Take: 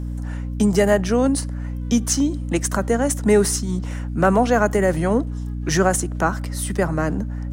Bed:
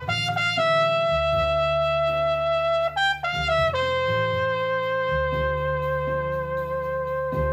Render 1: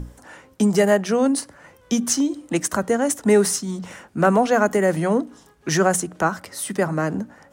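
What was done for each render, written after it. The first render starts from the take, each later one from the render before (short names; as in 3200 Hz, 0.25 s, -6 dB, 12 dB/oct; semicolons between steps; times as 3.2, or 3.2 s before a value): notches 60/120/180/240/300 Hz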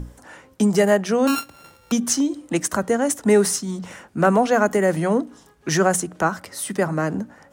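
1.27–1.92 sample sorter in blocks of 32 samples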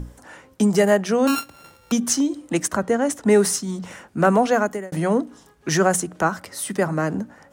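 2.67–3.31 high shelf 5600 Hz -> 9300 Hz -9.5 dB; 4.51–4.92 fade out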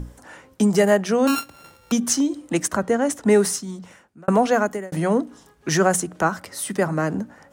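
3.3–4.28 fade out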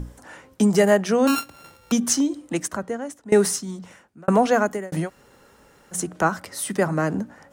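2.14–3.32 fade out, to -22 dB; 5.05–5.96 room tone, crossfade 0.10 s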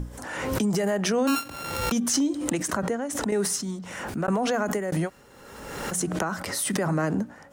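limiter -17.5 dBFS, peak gain reduction 11 dB; backwards sustainer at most 38 dB/s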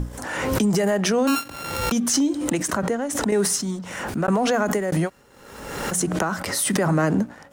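vocal rider within 4 dB 2 s; sample leveller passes 1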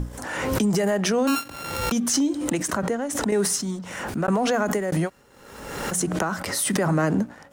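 gain -1.5 dB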